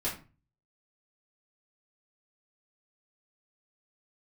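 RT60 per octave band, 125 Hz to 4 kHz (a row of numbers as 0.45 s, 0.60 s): 0.60 s, 0.45 s, 0.35 s, 0.35 s, 0.30 s, 0.25 s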